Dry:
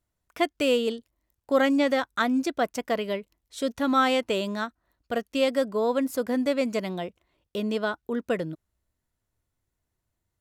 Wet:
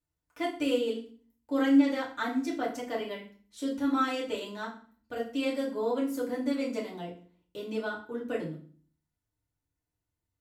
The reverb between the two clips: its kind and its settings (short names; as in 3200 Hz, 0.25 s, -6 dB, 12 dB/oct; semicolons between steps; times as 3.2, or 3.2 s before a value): FDN reverb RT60 0.44 s, low-frequency decay 1.5×, high-frequency decay 0.9×, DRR -5.5 dB; gain -13.5 dB